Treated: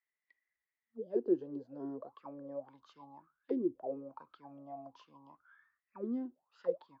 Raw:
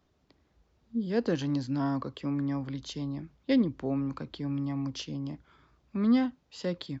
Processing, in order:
envelope filter 360–2,000 Hz, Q 19, down, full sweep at −24.5 dBFS
noise reduction from a noise print of the clip's start 8 dB
level +10 dB

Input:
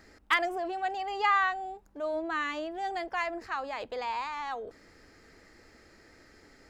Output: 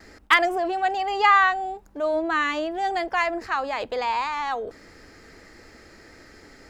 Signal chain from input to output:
noise gate with hold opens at −50 dBFS
level +8.5 dB

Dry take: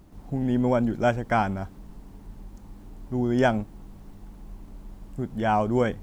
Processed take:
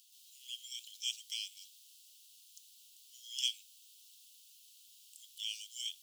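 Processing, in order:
Butterworth high-pass 2,900 Hz 72 dB per octave
level +8 dB

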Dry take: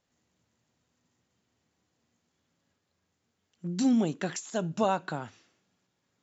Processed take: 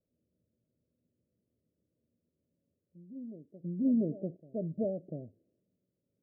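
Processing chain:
Butterworth low-pass 630 Hz 96 dB per octave
backwards echo 693 ms −16.5 dB
level −3.5 dB

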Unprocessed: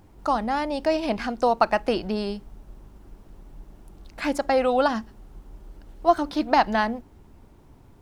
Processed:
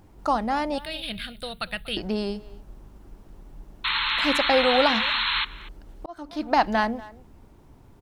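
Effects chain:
0:00.78–0:01.97: drawn EQ curve 180 Hz 0 dB, 260 Hz −17 dB, 540 Hz −14 dB, 940 Hz −24 dB, 1,400 Hz −7 dB, 2,500 Hz 0 dB, 3,700 Hz +13 dB, 6,000 Hz −26 dB, 9,300 Hz +8 dB
0:03.84–0:05.45: sound drawn into the spectrogram noise 850–4,300 Hz −25 dBFS
far-end echo of a speakerphone 240 ms, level −18 dB
0:06.06–0:06.66: fade in

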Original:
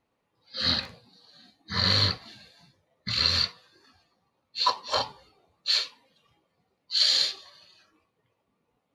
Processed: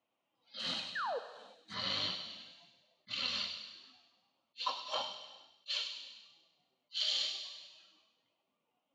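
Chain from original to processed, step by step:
0:00.59–0:01.74: variable-slope delta modulation 64 kbit/s
loudspeaker in its box 210–6,900 Hz, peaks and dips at 440 Hz −9 dB, 640 Hz +5 dB, 1,700 Hz −7 dB, 3,000 Hz +9 dB, 4,500 Hz −7 dB
in parallel at −2 dB: downward compressor, threshold −40 dBFS, peak gain reduction 19 dB
on the sum: flanger 0.35 Hz, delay 1.6 ms, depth 8.4 ms, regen +54%
0:00.95–0:01.19: sound drawn into the spectrogram fall 430–1,900 Hz −29 dBFS
on a send: delay with a high-pass on its return 100 ms, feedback 53%, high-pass 2,600 Hz, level −6 dB
on the sum: reverb whose tail is shaped and stops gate 480 ms falling, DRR 9.5 dB
level that may rise only so fast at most 530 dB per second
level −8 dB

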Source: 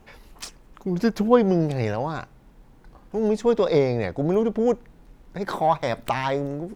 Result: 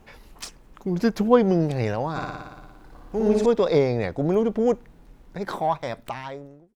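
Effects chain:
fade-out on the ending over 1.56 s
0:02.10–0:03.46: flutter between parallel walls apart 9.9 metres, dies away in 1.3 s

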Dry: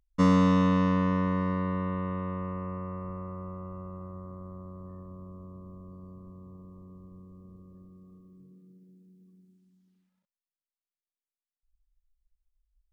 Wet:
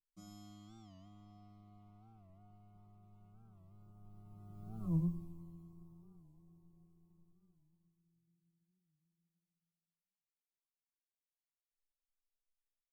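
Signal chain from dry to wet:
source passing by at 0:04.90, 35 m/s, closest 3.3 metres
bass and treble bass +13 dB, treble +14 dB
notch filter 930 Hz
leveller curve on the samples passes 1
phaser with its sweep stopped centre 330 Hz, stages 8
tuned comb filter 180 Hz, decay 0.23 s, harmonics all, mix 100%
single-tap delay 98 ms −7.5 dB
wow of a warped record 45 rpm, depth 160 cents
level +11.5 dB

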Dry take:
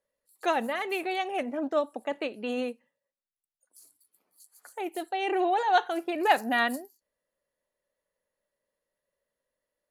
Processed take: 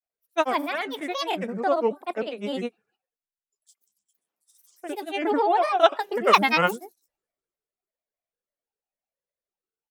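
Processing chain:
granular cloud 100 ms, grains 20 per second, pitch spread up and down by 7 semitones
multiband upward and downward expander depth 40%
level +5 dB

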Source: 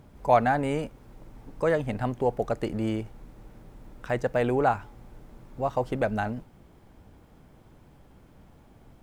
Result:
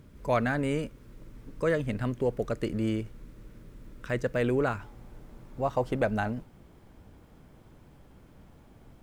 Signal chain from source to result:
parametric band 790 Hz −14.5 dB 0.52 octaves, from 0:04.80 −2.5 dB

